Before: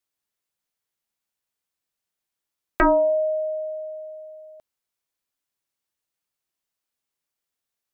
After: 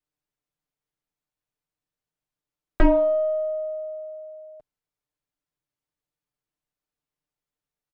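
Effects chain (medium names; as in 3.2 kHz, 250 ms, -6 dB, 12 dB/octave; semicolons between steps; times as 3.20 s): single-diode clipper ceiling -18 dBFS; tilt EQ -2.5 dB/octave; comb 6.7 ms, depth 66%; trim -4 dB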